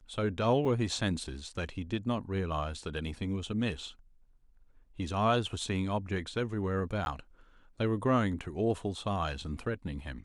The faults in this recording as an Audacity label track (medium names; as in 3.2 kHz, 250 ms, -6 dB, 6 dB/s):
0.650000	0.650000	dropout 2.6 ms
7.050000	7.060000	dropout